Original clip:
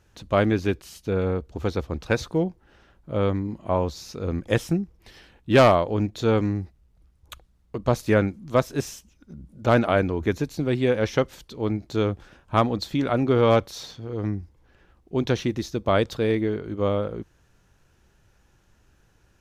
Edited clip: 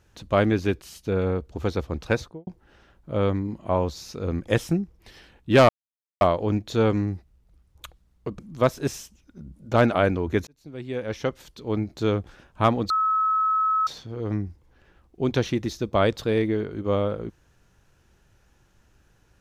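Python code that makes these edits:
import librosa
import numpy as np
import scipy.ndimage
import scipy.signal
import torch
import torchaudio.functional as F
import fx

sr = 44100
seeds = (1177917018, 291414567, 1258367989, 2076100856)

y = fx.studio_fade_out(x, sr, start_s=2.09, length_s=0.38)
y = fx.edit(y, sr, fx.insert_silence(at_s=5.69, length_s=0.52),
    fx.cut(start_s=7.87, length_s=0.45),
    fx.fade_in_span(start_s=10.4, length_s=1.35),
    fx.bleep(start_s=12.83, length_s=0.97, hz=1290.0, db=-19.0), tone=tone)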